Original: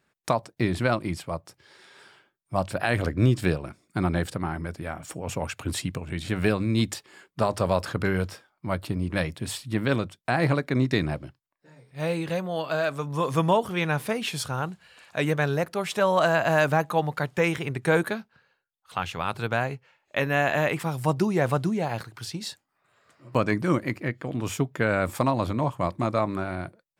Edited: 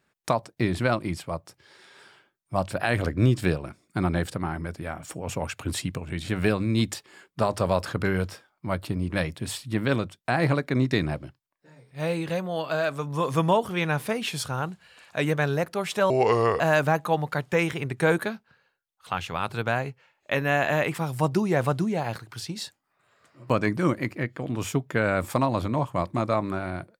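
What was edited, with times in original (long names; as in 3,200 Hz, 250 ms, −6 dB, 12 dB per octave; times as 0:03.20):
0:16.10–0:16.45: play speed 70%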